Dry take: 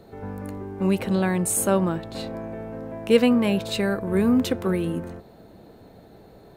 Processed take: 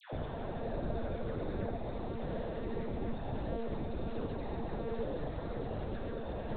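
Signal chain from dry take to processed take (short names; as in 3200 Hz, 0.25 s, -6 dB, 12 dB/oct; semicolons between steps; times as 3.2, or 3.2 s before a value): Paulstretch 14×, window 0.05 s, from 5.35; monotone LPC vocoder at 8 kHz 230 Hz; dispersion lows, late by 0.128 s, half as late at 1000 Hz; gain +11 dB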